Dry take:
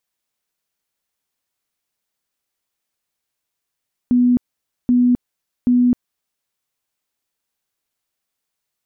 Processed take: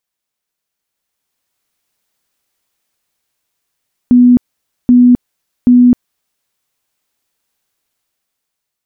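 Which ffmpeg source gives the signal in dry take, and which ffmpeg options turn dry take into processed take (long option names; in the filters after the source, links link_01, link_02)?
-f lavfi -i "aevalsrc='0.299*sin(2*PI*246*mod(t,0.78))*lt(mod(t,0.78),64/246)':duration=2.34:sample_rate=44100"
-af "dynaudnorm=framelen=380:gausssize=7:maxgain=10dB"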